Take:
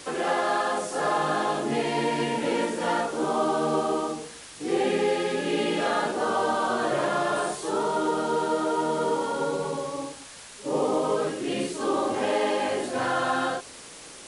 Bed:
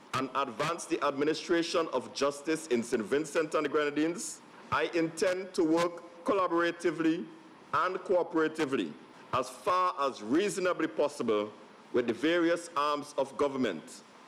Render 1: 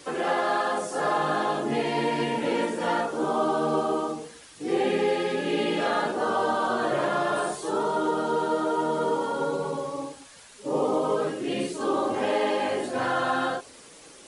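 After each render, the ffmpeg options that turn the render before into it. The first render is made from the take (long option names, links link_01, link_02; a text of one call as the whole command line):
ffmpeg -i in.wav -af "afftdn=noise_reduction=7:noise_floor=-44" out.wav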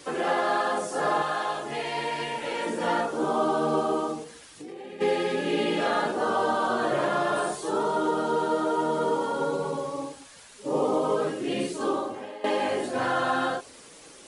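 ffmpeg -i in.wav -filter_complex "[0:a]asettb=1/sr,asplit=3[link_01][link_02][link_03];[link_01]atrim=end=1.224[link_04];[link_02]atrim=start=1.22:end=2.66,asetpts=PTS-STARTPTS,afade=type=in:duration=0.004:curve=qsin,afade=type=out:start_time=1.436:duration=0.004:curve=qsin,equalizer=frequency=240:width_type=o:width=1.7:gain=-14[link_05];[link_03]atrim=start=2.656[link_06];[link_04][link_05]acrossfade=duration=0.004:curve1=hsin:curve2=qsin[link_07];[link_07][link_06]acrossfade=duration=0.004:curve1=qsin:curve2=hsin,asplit=3[link_08][link_09][link_10];[link_08]afade=type=out:start_time=4.23:duration=0.02[link_11];[link_09]acompressor=threshold=-37dB:ratio=10:attack=3.2:release=140:knee=1:detection=peak,afade=type=in:start_time=4.23:duration=0.02,afade=type=out:start_time=5:duration=0.02[link_12];[link_10]afade=type=in:start_time=5:duration=0.02[link_13];[link_11][link_12][link_13]amix=inputs=3:normalize=0,asplit=2[link_14][link_15];[link_14]atrim=end=12.44,asetpts=PTS-STARTPTS,afade=type=out:start_time=11.87:duration=0.57:curve=qua:silence=0.141254[link_16];[link_15]atrim=start=12.44,asetpts=PTS-STARTPTS,afade=type=in:duration=0.004:curve=hsin:silence=0.141254[link_17];[link_16][link_17]concat=n=2:v=0:a=1" out.wav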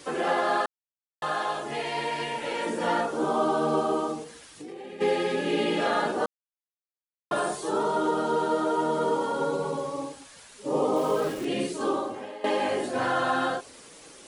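ffmpeg -i in.wav -filter_complex "[0:a]asettb=1/sr,asplit=3[link_01][link_02][link_03];[link_01]atrim=end=10.964[link_04];[link_02]atrim=start=10.96:end=11.45,asetpts=PTS-STARTPTS,afade=type=in:duration=0.004:curve=qsin,afade=type=out:start_time=0.486:duration=0.004:curve=qsin,aeval=exprs='val(0)*gte(abs(val(0)),0.015)':channel_layout=same[link_05];[link_03]atrim=start=11.446[link_06];[link_04][link_05]acrossfade=duration=0.004:curve1=hsin:curve2=qsin[link_07];[link_07][link_06]acrossfade=duration=0.004:curve1=qsin:curve2=hsin,asplit=5[link_08][link_09][link_10][link_11][link_12];[link_08]atrim=end=0.66,asetpts=PTS-STARTPTS,afade=type=out:start_time=0.656:duration=0.004:curve=hsin[link_13];[link_09]atrim=start=0.66:end=1.22,asetpts=PTS-STARTPTS,volume=0[link_14];[link_10]atrim=start=1.22:end=6.26,asetpts=PTS-STARTPTS,afade=type=in:duration=0.004:curve=hsin,afade=type=out:start_time=5.036:duration=0.004:curve=hsin[link_15];[link_11]atrim=start=6.26:end=7.31,asetpts=PTS-STARTPTS,volume=0[link_16];[link_12]atrim=start=7.31,asetpts=PTS-STARTPTS,afade=type=in:duration=0.004:curve=hsin[link_17];[link_13][link_14][link_15][link_16][link_17]concat=n=5:v=0:a=1" out.wav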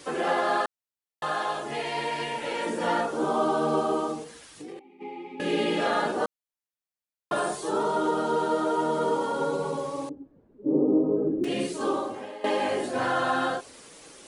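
ffmpeg -i in.wav -filter_complex "[0:a]asettb=1/sr,asplit=3[link_01][link_02][link_03];[link_01]atrim=end=4.794[link_04];[link_02]atrim=start=4.79:end=5.4,asetpts=PTS-STARTPTS,afade=type=in:duration=0.004:curve=qsin,afade=type=out:start_time=0.606:duration=0.004:curve=qsin,asplit=3[link_05][link_06][link_07];[link_05]bandpass=frequency=300:width_type=q:width=8,volume=0dB[link_08];[link_06]bandpass=frequency=870:width_type=q:width=8,volume=-6dB[link_09];[link_07]bandpass=frequency=2240:width_type=q:width=8,volume=-9dB[link_10];[link_08][link_09][link_10]amix=inputs=3:normalize=0[link_11];[link_03]atrim=start=5.396[link_12];[link_04][link_11]acrossfade=duration=0.004:curve1=hsin:curve2=qsin[link_13];[link_13][link_12]acrossfade=duration=0.004:curve1=qsin:curve2=hsin,asettb=1/sr,asplit=3[link_14][link_15][link_16];[link_14]atrim=end=10.094[link_17];[link_15]atrim=start=10.09:end=11.44,asetpts=PTS-STARTPTS,afade=type=in:duration=0.004:curve=qsin,afade=type=out:start_time=1.346:duration=0.004:curve=qsin,lowpass=frequency=320:width_type=q:width=2.9[link_18];[link_16]atrim=start=11.436[link_19];[link_17][link_18]acrossfade=duration=0.004:curve1=hsin:curve2=qsin[link_20];[link_20][link_19]acrossfade=duration=0.004:curve1=qsin:curve2=hsin" out.wav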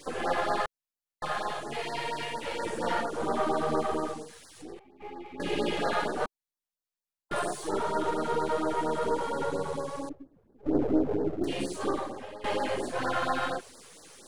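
ffmpeg -i in.wav -af "aeval=exprs='if(lt(val(0),0),0.447*val(0),val(0))':channel_layout=same,afftfilt=real='re*(1-between(b*sr/1024,220*pow(2900/220,0.5+0.5*sin(2*PI*4.3*pts/sr))/1.41,220*pow(2900/220,0.5+0.5*sin(2*PI*4.3*pts/sr))*1.41))':imag='im*(1-between(b*sr/1024,220*pow(2900/220,0.5+0.5*sin(2*PI*4.3*pts/sr))/1.41,220*pow(2900/220,0.5+0.5*sin(2*PI*4.3*pts/sr))*1.41))':win_size=1024:overlap=0.75" out.wav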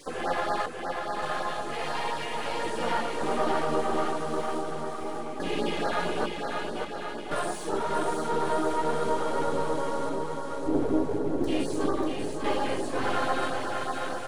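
ffmpeg -i in.wav -filter_complex "[0:a]asplit=2[link_01][link_02];[link_02]adelay=18,volume=-14dB[link_03];[link_01][link_03]amix=inputs=2:normalize=0,aecho=1:1:590|1092|1518|1880|2188:0.631|0.398|0.251|0.158|0.1" out.wav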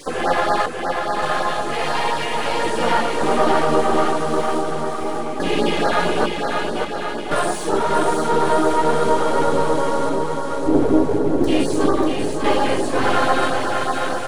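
ffmpeg -i in.wav -af "volume=10dB" out.wav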